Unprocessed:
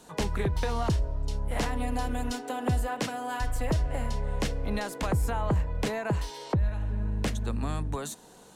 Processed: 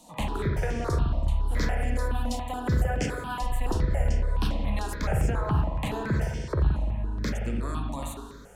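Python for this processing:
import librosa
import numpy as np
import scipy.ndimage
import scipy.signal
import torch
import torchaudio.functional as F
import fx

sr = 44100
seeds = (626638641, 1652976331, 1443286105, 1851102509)

y = fx.rev_spring(x, sr, rt60_s=1.4, pass_ms=(42, 56), chirp_ms=40, drr_db=1.0)
y = fx.phaser_held(y, sr, hz=7.1, low_hz=410.0, high_hz=3900.0)
y = F.gain(torch.from_numpy(y), 1.5).numpy()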